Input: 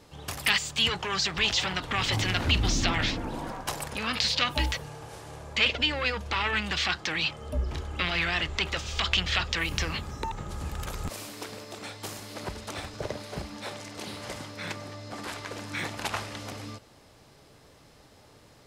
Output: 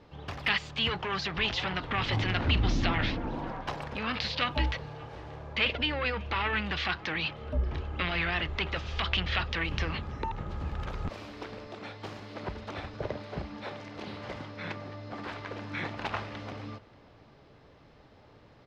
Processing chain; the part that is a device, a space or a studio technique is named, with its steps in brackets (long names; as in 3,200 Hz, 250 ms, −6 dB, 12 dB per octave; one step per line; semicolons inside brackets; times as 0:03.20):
shout across a valley (high-frequency loss of the air 250 metres; slap from a distant wall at 100 metres, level −22 dB)